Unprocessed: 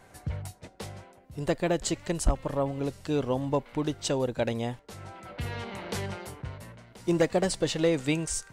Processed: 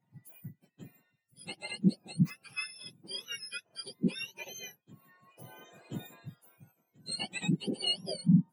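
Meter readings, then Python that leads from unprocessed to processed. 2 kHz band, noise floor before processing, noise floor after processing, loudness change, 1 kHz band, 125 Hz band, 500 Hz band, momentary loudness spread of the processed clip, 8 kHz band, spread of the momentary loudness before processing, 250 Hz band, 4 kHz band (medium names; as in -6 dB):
-4.5 dB, -56 dBFS, -79 dBFS, -4.0 dB, -16.0 dB, -1.5 dB, -18.0 dB, 21 LU, -10.0 dB, 17 LU, -2.0 dB, +2.0 dB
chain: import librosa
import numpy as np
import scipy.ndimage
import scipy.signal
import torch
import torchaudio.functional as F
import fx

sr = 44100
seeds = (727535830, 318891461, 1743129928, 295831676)

y = fx.octave_mirror(x, sr, pivot_hz=1200.0)
y = fx.spectral_expand(y, sr, expansion=1.5)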